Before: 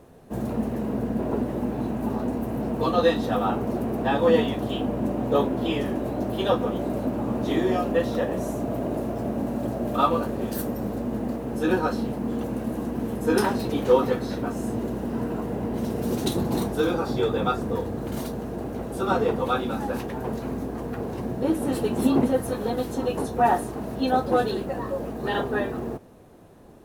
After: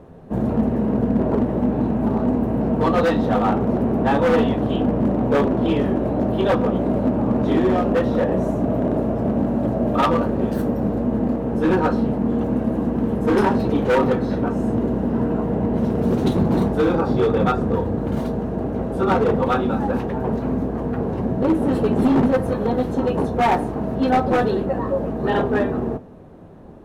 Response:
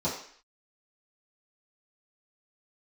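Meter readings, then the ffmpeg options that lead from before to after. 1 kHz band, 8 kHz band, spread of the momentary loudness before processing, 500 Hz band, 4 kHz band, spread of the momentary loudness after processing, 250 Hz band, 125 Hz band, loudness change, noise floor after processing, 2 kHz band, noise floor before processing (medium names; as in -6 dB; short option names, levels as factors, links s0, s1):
+4.0 dB, no reading, 9 LU, +4.5 dB, -1.0 dB, 5 LU, +7.0 dB, +8.0 dB, +5.5 dB, -27 dBFS, +4.0 dB, -34 dBFS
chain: -filter_complex "[0:a]lowpass=f=1200:p=1,volume=10,asoftclip=hard,volume=0.1,asplit=2[s0][s1];[1:a]atrim=start_sample=2205[s2];[s1][s2]afir=irnorm=-1:irlink=0,volume=0.0668[s3];[s0][s3]amix=inputs=2:normalize=0,volume=2.37"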